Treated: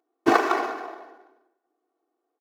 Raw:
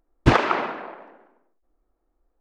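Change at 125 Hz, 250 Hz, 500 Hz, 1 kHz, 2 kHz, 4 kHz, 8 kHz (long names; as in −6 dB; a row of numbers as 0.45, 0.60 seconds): below −20 dB, −1.5 dB, 0.0 dB, 0.0 dB, −1.5 dB, −4.5 dB, can't be measured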